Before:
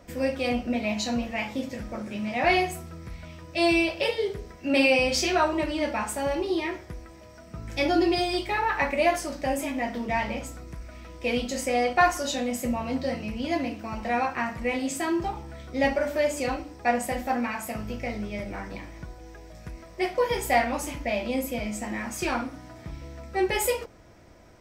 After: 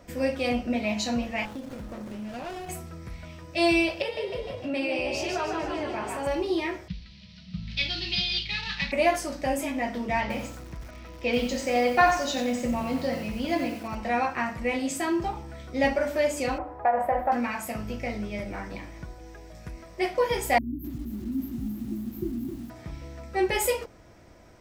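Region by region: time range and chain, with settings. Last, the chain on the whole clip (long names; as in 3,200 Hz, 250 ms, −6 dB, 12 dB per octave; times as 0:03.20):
0:01.45–0:02.69: high-shelf EQ 6,900 Hz +12 dB + downward compressor 5 to 1, threshold −33 dBFS + windowed peak hold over 17 samples
0:04.02–0:06.27: high-shelf EQ 4,200 Hz −7 dB + echo with shifted repeats 150 ms, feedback 51%, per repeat +50 Hz, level −4.5 dB + downward compressor 2 to 1, threshold −31 dBFS
0:06.88–0:08.92: variable-slope delta modulation 32 kbit/s + drawn EQ curve 130 Hz 0 dB, 190 Hz +13 dB, 290 Hz −21 dB, 870 Hz −19 dB, 1,400 Hz −12 dB, 2,800 Hz +6 dB, 4,200 Hz +10 dB, 7,000 Hz −12 dB, 10,000 Hz +5 dB, 14,000 Hz −12 dB
0:10.21–0:13.95: low-pass filter 6,700 Hz 24 dB per octave + feedback echo at a low word length 90 ms, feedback 35%, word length 7 bits, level −7 dB
0:16.58–0:17.32: drawn EQ curve 120 Hz 0 dB, 230 Hz −7 dB, 470 Hz +5 dB, 680 Hz +11 dB, 970 Hz +11 dB, 1,600 Hz +4 dB, 3,200 Hz −15 dB, 6,500 Hz −29 dB, 13,000 Hz −13 dB + downward compressor 5 to 1, threshold −19 dBFS
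0:20.58–0:22.70: linear-phase brick-wall band-stop 390–12,000 Hz + parametric band 130 Hz +5 dB 0.46 octaves + feedback echo at a low word length 263 ms, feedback 55%, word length 8 bits, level −7 dB
whole clip: no processing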